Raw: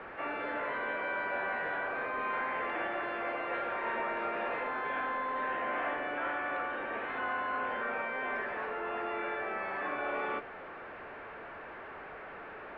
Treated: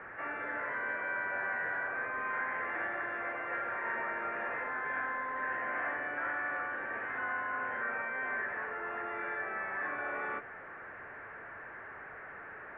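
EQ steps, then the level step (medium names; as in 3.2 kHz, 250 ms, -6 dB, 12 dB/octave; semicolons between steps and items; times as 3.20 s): resonant low-pass 1.8 kHz, resonance Q 3.1; peaking EQ 110 Hz +8 dB 0.94 oct; -6.5 dB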